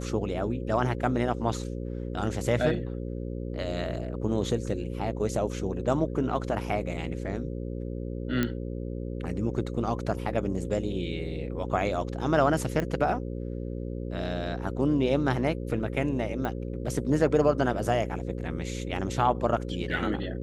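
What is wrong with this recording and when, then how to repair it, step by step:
buzz 60 Hz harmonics 9 -34 dBFS
8.43 pop -13 dBFS
12.8 pop -17 dBFS
16.45 pop -20 dBFS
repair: de-click; de-hum 60 Hz, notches 9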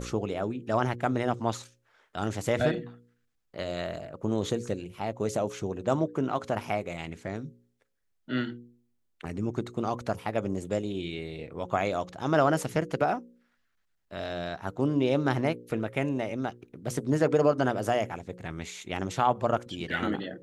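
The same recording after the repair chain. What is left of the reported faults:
none

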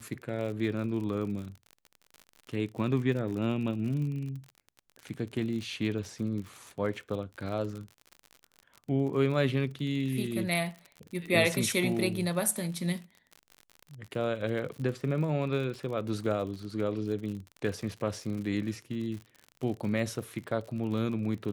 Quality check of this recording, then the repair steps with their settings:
crackle 54/s -37 dBFS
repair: de-click

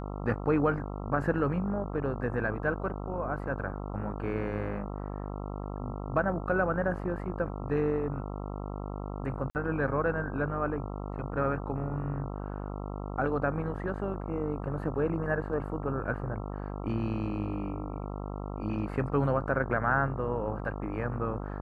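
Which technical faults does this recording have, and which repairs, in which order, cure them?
buzz 50 Hz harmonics 27 -37 dBFS
9.5–9.55 gap 49 ms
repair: de-hum 50 Hz, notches 27; interpolate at 9.5, 49 ms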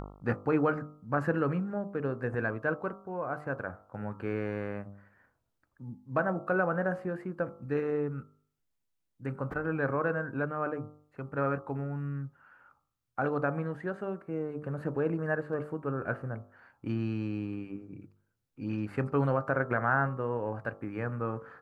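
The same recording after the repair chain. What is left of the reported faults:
none

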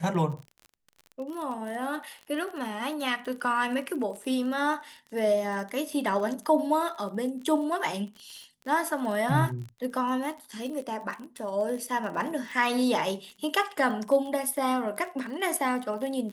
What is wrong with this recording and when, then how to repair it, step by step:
crackle 35/s -35 dBFS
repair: de-click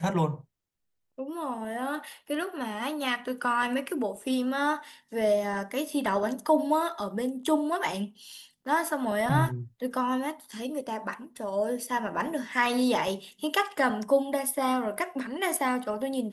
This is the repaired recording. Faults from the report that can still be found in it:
none

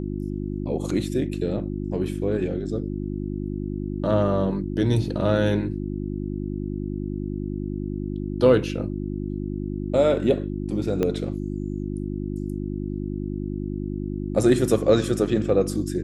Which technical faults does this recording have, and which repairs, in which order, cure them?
hum 50 Hz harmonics 7 -29 dBFS
11.03 pop -12 dBFS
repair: de-click; de-hum 50 Hz, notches 7

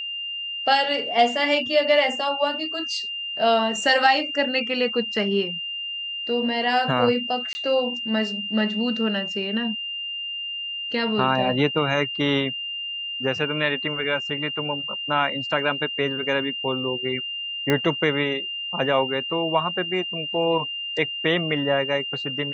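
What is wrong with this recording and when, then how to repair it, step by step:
tone 2800 Hz -28 dBFS
7.53–7.55 gap 20 ms
17.7 pop -8 dBFS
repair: de-click; notch 2800 Hz, Q 30; interpolate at 7.53, 20 ms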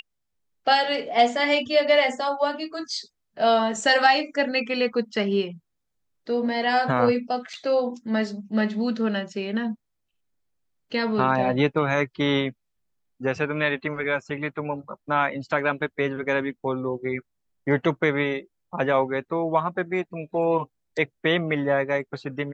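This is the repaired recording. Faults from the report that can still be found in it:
none

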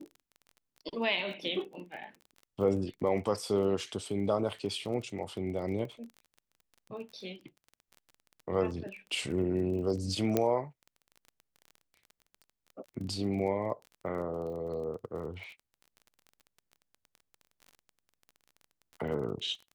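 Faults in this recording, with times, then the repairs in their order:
crackle 24/s -41 dBFS
10.37 pop -13 dBFS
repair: de-click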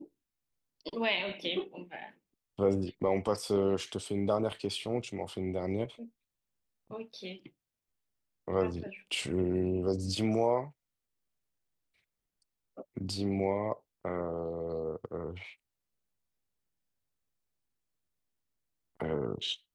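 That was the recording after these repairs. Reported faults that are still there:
none

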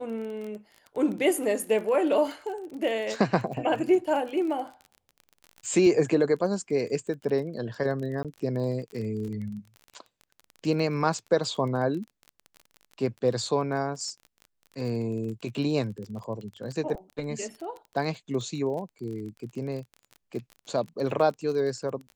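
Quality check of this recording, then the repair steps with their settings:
crackle 27/s -35 dBFS
8.23–8.25 gap 17 ms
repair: de-click; interpolate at 8.23, 17 ms

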